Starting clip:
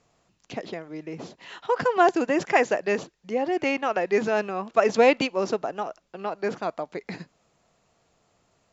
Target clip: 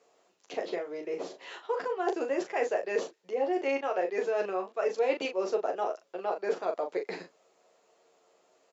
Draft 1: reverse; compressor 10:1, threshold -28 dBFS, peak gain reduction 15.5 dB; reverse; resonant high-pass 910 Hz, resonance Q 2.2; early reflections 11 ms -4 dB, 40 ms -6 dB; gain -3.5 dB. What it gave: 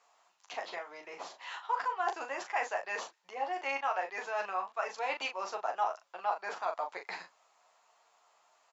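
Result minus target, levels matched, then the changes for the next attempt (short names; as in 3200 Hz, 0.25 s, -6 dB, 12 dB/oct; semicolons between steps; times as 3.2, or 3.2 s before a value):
500 Hz band -6.5 dB
change: resonant high-pass 430 Hz, resonance Q 2.2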